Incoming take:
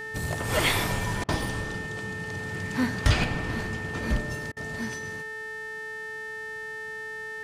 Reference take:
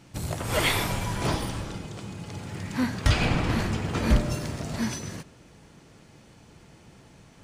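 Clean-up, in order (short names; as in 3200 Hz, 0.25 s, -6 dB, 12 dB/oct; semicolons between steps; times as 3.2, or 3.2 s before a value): de-hum 435.8 Hz, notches 29; notch 1800 Hz, Q 30; interpolate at 1.24/4.52, 45 ms; gain 0 dB, from 3.24 s +6 dB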